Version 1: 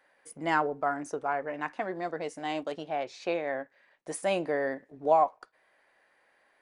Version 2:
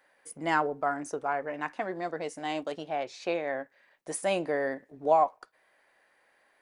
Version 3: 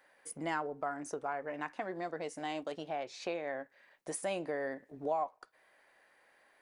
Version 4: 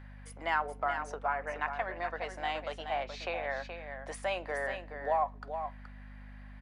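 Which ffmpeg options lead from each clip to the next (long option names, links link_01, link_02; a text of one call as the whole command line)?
ffmpeg -i in.wav -af "highshelf=frequency=6700:gain=5" out.wav
ffmpeg -i in.wav -af "acompressor=threshold=-39dB:ratio=2" out.wav
ffmpeg -i in.wav -filter_complex "[0:a]acrossover=split=590 4200:gain=0.0794 1 0.141[link_01][link_02][link_03];[link_01][link_02][link_03]amix=inputs=3:normalize=0,aeval=exprs='val(0)+0.00178*(sin(2*PI*50*n/s)+sin(2*PI*2*50*n/s)/2+sin(2*PI*3*50*n/s)/3+sin(2*PI*4*50*n/s)/4+sin(2*PI*5*50*n/s)/5)':channel_layout=same,aecho=1:1:424:0.398,volume=7dB" out.wav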